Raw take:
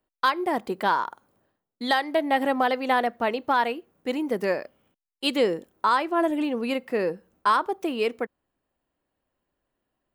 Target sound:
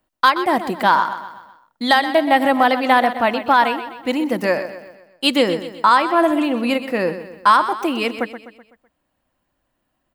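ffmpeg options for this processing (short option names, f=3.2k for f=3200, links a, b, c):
-filter_complex "[0:a]equalizer=f=420:w=5.2:g=-12.5,asplit=2[a][b];[b]aecho=0:1:126|252|378|504|630:0.251|0.121|0.0579|0.0278|0.0133[c];[a][c]amix=inputs=2:normalize=0,volume=8.5dB"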